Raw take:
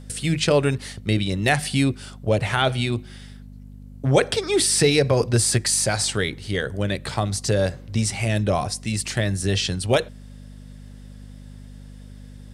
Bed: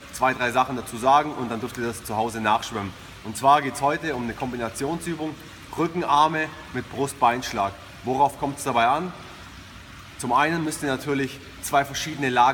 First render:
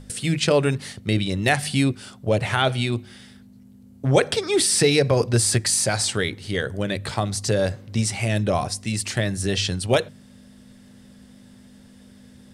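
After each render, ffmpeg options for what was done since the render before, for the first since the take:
-af "bandreject=f=50:t=h:w=4,bandreject=f=100:t=h:w=4,bandreject=f=150:t=h:w=4"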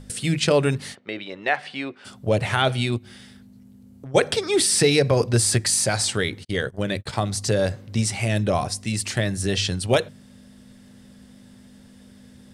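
-filter_complex "[0:a]asplit=3[a][b][c];[a]afade=t=out:st=0.94:d=0.02[d];[b]highpass=510,lowpass=2.3k,afade=t=in:st=0.94:d=0.02,afade=t=out:st=2.04:d=0.02[e];[c]afade=t=in:st=2.04:d=0.02[f];[d][e][f]amix=inputs=3:normalize=0,asplit=3[g][h][i];[g]afade=t=out:st=2.97:d=0.02[j];[h]acompressor=threshold=-36dB:ratio=6:attack=3.2:release=140:knee=1:detection=peak,afade=t=in:st=2.97:d=0.02,afade=t=out:st=4.14:d=0.02[k];[i]afade=t=in:st=4.14:d=0.02[l];[j][k][l]amix=inputs=3:normalize=0,asplit=3[m][n][o];[m]afade=t=out:st=6.43:d=0.02[p];[n]agate=range=-47dB:threshold=-31dB:ratio=16:release=100:detection=peak,afade=t=in:st=6.43:d=0.02,afade=t=out:st=7.12:d=0.02[q];[o]afade=t=in:st=7.12:d=0.02[r];[p][q][r]amix=inputs=3:normalize=0"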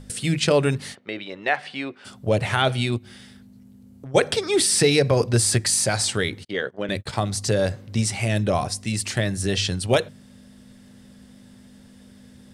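-filter_complex "[0:a]asettb=1/sr,asplit=3[a][b][c];[a]atrim=end=6.484[d];[b]atrim=start=6.48:end=6.89,asetpts=PTS-STARTPTS,afade=t=in:d=0.004:c=qsin,afade=t=out:st=0.406:d=0.004:c=qsin,highpass=260,lowpass=3.6k[e];[c]atrim=start=6.886[f];[d][e]acrossfade=d=0.004:c1=hsin:c2=qsin[g];[g][f]acrossfade=d=0.004:c1=qsin:c2=hsin"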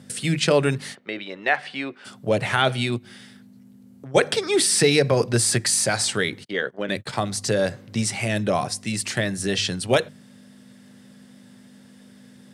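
-af "highpass=f=120:w=0.5412,highpass=f=120:w=1.3066,equalizer=f=1.7k:w=1.5:g=2.5"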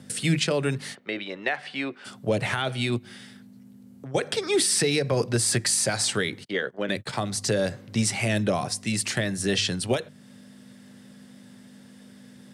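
-filter_complex "[0:a]alimiter=limit=-12dB:level=0:latency=1:release=336,acrossover=split=390|3000[a][b][c];[b]acompressor=threshold=-24dB:ratio=6[d];[a][d][c]amix=inputs=3:normalize=0"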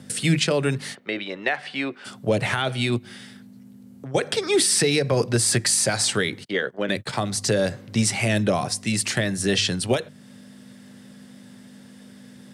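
-af "volume=3dB"

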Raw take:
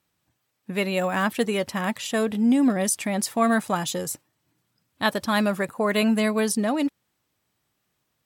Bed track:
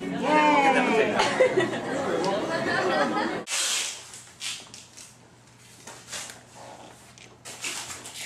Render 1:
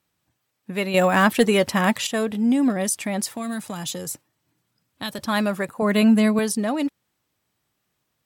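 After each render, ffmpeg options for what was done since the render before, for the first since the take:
-filter_complex "[0:a]asettb=1/sr,asplit=3[a][b][c];[a]atrim=end=0.944[d];[b]atrim=start=0.94:end=2.07,asetpts=PTS-STARTPTS,afade=t=in:d=0.004:c=qsin,afade=t=out:st=1.126:d=0.004:c=qsin,acontrast=77[e];[c]atrim=start=2.066[f];[d][e]acrossfade=d=0.004:c1=hsin:c2=qsin[g];[g][f]acrossfade=d=0.004:c1=qsin:c2=hsin,asettb=1/sr,asplit=3[h][i][j];[h]atrim=end=3.294[k];[i]atrim=start=3.29:end=5.19,asetpts=PTS-STARTPTS,afade=t=in:d=0.004:c=qsin,afade=t=out:st=1.896:d=0.004:c=qsin,acrossover=split=190|3000[l][m][n];[m]acompressor=threshold=-30dB:ratio=6:attack=3.2:release=140:knee=2.83:detection=peak[o];[l][o][n]amix=inputs=3:normalize=0[p];[j]atrim=start=5.186[q];[k][p]acrossfade=d=0.004:c1=hsin:c2=qsin[r];[r][q]acrossfade=d=0.004:c1=qsin:c2=hsin,asettb=1/sr,asplit=3[s][t][u];[s]atrim=end=5.824[v];[t]atrim=start=5.82:end=6.39,asetpts=PTS-STARTPTS,afade=t=in:d=0.004:c=qsin,afade=t=out:st=0.566:d=0.004:c=qsin,highpass=f=180:t=q:w=2.2[w];[u]atrim=start=6.386[x];[v][w]acrossfade=d=0.004:c1=hsin:c2=qsin[y];[y][x]acrossfade=d=0.004:c1=qsin:c2=hsin"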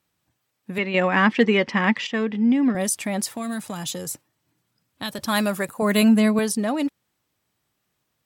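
-filter_complex "[0:a]asettb=1/sr,asplit=3[a][b][c];[a]atrim=end=0.784[d];[b]atrim=start=0.78:end=2.75,asetpts=PTS-STARTPTS,afade=t=in:d=0.004:c=qsin,afade=t=out:st=1.966:d=0.004:c=qsin,highpass=200,equalizer=f=220:t=q:w=4:g=4,equalizer=f=650:t=q:w=4:g=-9,equalizer=f=1.4k:t=q:w=4:g=-3,equalizer=f=2k:t=q:w=4:g=6,equalizer=f=4k:t=q:w=4:g=-8,lowpass=f=4.8k:w=0.5412,lowpass=f=4.8k:w=1.3066[e];[c]atrim=start=2.746[f];[d][e]acrossfade=d=0.004:c1=hsin:c2=qsin[g];[g][f]acrossfade=d=0.004:c1=qsin:c2=hsin,asettb=1/sr,asplit=3[h][i][j];[h]atrim=end=5.244[k];[i]atrim=start=5.24:end=6.09,asetpts=PTS-STARTPTS,afade=t=in:d=0.004:c=qsin,afade=t=out:st=0.846:d=0.004:c=qsin,aemphasis=mode=production:type=cd[l];[j]atrim=start=6.086[m];[k][l]acrossfade=d=0.004:c1=hsin:c2=qsin[n];[n][m]acrossfade=d=0.004:c1=qsin:c2=hsin"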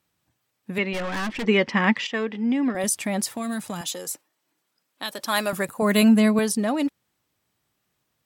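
-filter_complex "[0:a]asettb=1/sr,asplit=3[a][b][c];[a]atrim=end=0.934[d];[b]atrim=start=0.93:end=1.47,asetpts=PTS-STARTPTS,afade=t=in:d=0.004:c=qsin,afade=t=out:st=0.536:d=0.004:c=qsin,aeval=exprs='(tanh(20*val(0)+0.35)-tanh(0.35))/20':c=same[e];[c]atrim=start=1.466[f];[d][e]acrossfade=d=0.004:c1=hsin:c2=qsin[g];[g][f]acrossfade=d=0.004:c1=qsin:c2=hsin,asettb=1/sr,asplit=3[h][i][j];[h]atrim=end=2.044[k];[i]atrim=start=2.04:end=2.84,asetpts=PTS-STARTPTS,afade=t=in:d=0.004:c=qsin,afade=t=out:st=0.796:d=0.004:c=qsin,equalizer=f=150:w=1.5:g=-13.5[l];[j]atrim=start=2.836[m];[k][l]acrossfade=d=0.004:c1=hsin:c2=qsin[n];[n][m]acrossfade=d=0.004:c1=qsin:c2=hsin,asettb=1/sr,asplit=3[o][p][q];[o]atrim=end=3.814[r];[p]atrim=start=3.81:end=5.53,asetpts=PTS-STARTPTS,afade=t=in:d=0.004:c=qsin,afade=t=out:st=1.716:d=0.004:c=qsin,highpass=360[s];[q]atrim=start=5.526[t];[r][s]acrossfade=d=0.004:c1=hsin:c2=qsin[u];[u][t]acrossfade=d=0.004:c1=qsin:c2=hsin"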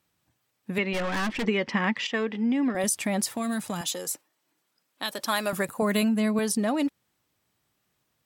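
-af "acompressor=threshold=-21dB:ratio=12"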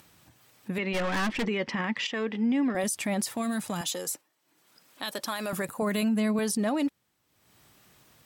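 -af "alimiter=limit=-20.5dB:level=0:latency=1:release=25,acompressor=mode=upward:threshold=-45dB:ratio=2.5"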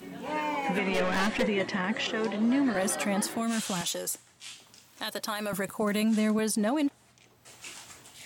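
-filter_complex "[1:a]volume=-11.5dB[a];[0:a][a]amix=inputs=2:normalize=0"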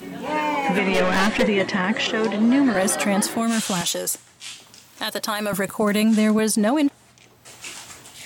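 -af "volume=8dB"

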